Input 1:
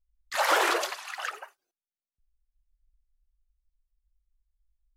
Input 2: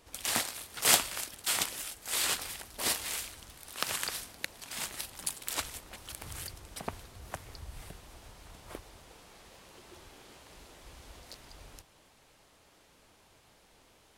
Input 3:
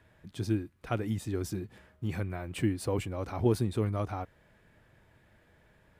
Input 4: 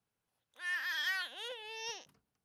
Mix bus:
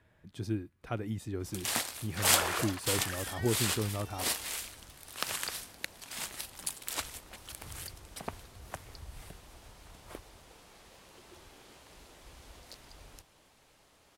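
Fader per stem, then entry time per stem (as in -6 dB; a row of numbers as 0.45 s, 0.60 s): -9.5 dB, -1.5 dB, -4.0 dB, -11.0 dB; 1.85 s, 1.40 s, 0.00 s, 2.30 s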